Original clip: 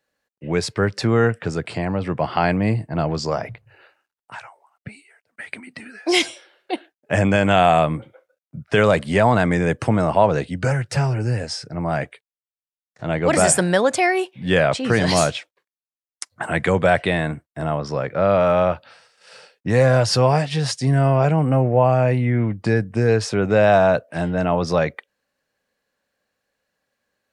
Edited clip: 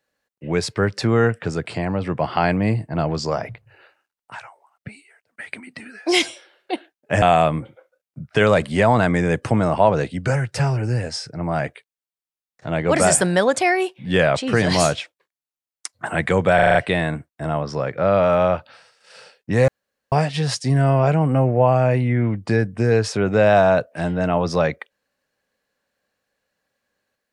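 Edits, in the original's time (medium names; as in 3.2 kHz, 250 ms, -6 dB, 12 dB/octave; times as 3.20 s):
7.22–7.59 s: delete
16.92 s: stutter 0.04 s, 6 plays
19.85–20.29 s: room tone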